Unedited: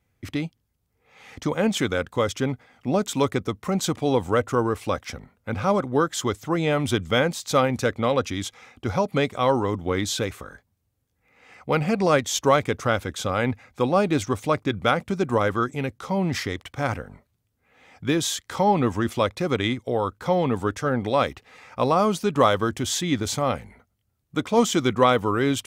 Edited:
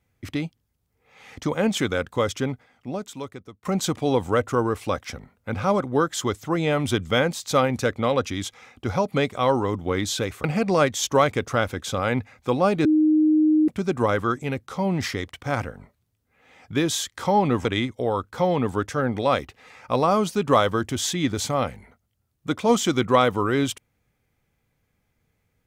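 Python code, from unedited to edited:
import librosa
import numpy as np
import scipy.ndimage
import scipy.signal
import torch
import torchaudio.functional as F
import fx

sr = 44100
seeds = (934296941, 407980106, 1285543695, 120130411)

y = fx.edit(x, sr, fx.fade_out_to(start_s=2.36, length_s=1.29, curve='qua', floor_db=-16.5),
    fx.cut(start_s=10.44, length_s=1.32),
    fx.bleep(start_s=14.17, length_s=0.83, hz=309.0, db=-14.5),
    fx.cut(start_s=18.97, length_s=0.56), tone=tone)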